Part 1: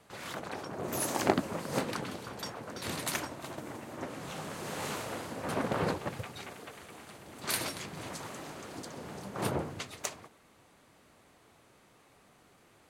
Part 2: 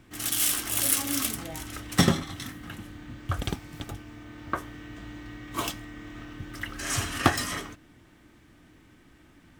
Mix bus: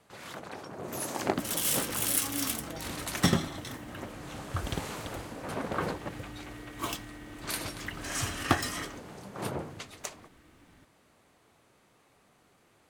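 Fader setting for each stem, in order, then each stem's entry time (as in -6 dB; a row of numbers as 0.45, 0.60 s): -2.5, -4.0 dB; 0.00, 1.25 s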